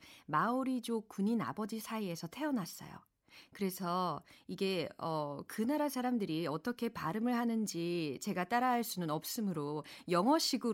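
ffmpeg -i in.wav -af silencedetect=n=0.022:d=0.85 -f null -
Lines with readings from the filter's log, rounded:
silence_start: 2.63
silence_end: 3.61 | silence_duration: 0.98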